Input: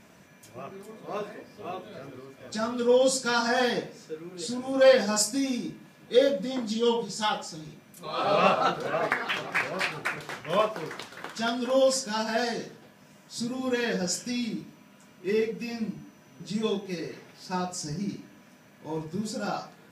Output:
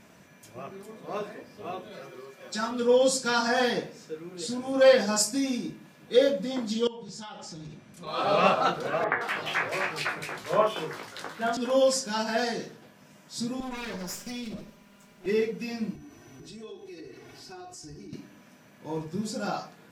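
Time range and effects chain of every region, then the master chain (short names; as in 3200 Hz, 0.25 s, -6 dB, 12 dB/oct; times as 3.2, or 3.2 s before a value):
1.9–2.71 HPF 360 Hz 6 dB/oct + comb 5.4 ms, depth 83%
6.87–8.07 LPF 8100 Hz + low shelf 130 Hz +9.5 dB + compressor 16:1, threshold -37 dBFS
9.04–11.57 doubler 19 ms -4 dB + three bands offset in time mids, lows, highs 30/170 ms, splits 210/2500 Hz
13.6–15.26 minimum comb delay 5 ms + compressor 3:1, threshold -34 dBFS
15.95–18.13 low shelf 190 Hz +11 dB + comb 2.7 ms, depth 94% + compressor 4:1, threshold -44 dBFS
whole clip: dry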